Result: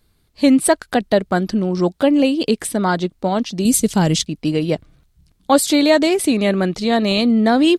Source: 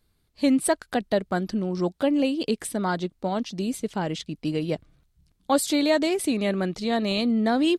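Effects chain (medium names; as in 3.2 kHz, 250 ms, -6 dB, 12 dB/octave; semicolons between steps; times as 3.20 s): 3.65–4.25 s: tone controls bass +9 dB, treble +14 dB; trim +8 dB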